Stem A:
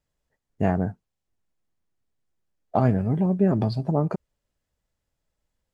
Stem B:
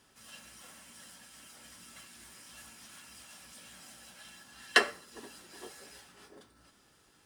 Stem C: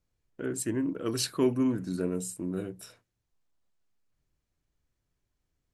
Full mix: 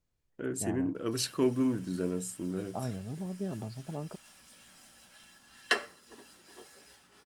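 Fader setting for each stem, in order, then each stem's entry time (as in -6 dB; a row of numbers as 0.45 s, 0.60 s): -16.0 dB, -4.5 dB, -2.0 dB; 0.00 s, 0.95 s, 0.00 s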